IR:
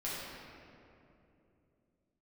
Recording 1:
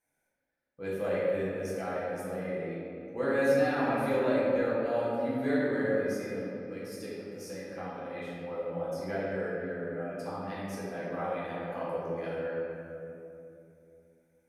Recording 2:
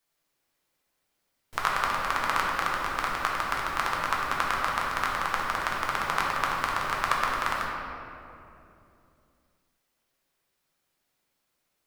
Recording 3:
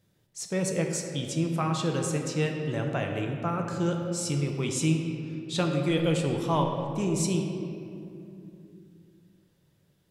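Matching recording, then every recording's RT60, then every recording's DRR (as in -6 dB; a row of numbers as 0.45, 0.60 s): 1; 2.8, 2.8, 2.8 s; -9.0, -3.5, 2.0 dB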